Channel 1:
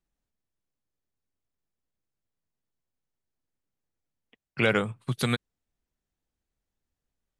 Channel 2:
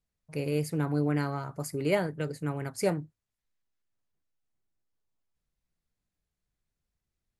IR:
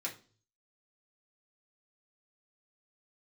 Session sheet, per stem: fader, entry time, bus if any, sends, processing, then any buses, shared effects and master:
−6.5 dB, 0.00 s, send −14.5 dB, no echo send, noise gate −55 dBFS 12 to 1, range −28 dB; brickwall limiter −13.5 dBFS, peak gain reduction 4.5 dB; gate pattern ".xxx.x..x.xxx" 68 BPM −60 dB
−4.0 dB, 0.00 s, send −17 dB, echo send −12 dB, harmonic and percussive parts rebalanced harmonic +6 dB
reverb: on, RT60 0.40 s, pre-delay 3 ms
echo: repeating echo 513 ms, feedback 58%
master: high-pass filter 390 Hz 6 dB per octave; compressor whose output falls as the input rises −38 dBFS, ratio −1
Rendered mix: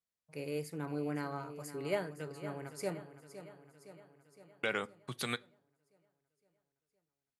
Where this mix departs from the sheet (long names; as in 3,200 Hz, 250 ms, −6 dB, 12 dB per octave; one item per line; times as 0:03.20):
stem 2 −4.0 dB → −10.5 dB
master: missing compressor whose output falls as the input rises −38 dBFS, ratio −1